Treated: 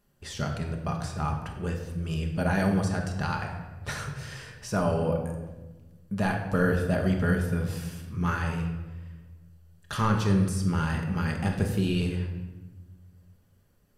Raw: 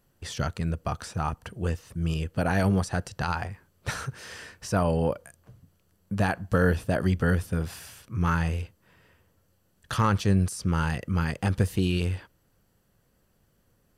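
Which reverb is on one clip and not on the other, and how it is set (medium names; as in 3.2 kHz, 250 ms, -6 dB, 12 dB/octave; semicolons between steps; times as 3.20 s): simulated room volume 750 m³, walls mixed, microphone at 1.3 m; trim -3.5 dB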